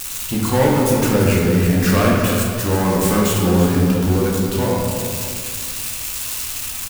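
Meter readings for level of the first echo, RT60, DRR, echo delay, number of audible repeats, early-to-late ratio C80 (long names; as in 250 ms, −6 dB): −10.0 dB, 2.0 s, −4.5 dB, 337 ms, 1, 1.5 dB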